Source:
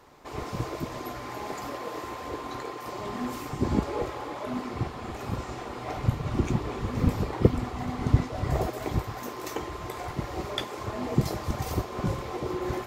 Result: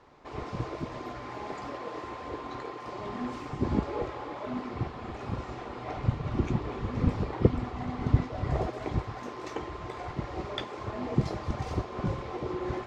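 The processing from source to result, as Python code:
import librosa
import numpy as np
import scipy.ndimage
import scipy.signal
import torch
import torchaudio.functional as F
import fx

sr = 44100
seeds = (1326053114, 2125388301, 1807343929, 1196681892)

y = fx.air_absorb(x, sr, metres=120.0)
y = y * 10.0 ** (-2.0 / 20.0)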